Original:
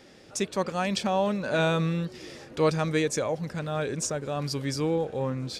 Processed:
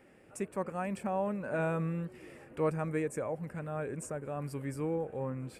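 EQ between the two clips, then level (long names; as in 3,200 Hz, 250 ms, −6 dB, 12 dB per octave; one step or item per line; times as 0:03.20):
flat-topped bell 4,700 Hz −16 dB 1.2 octaves
dynamic equaliser 3,300 Hz, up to −8 dB, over −49 dBFS, Q 1.1
−7.0 dB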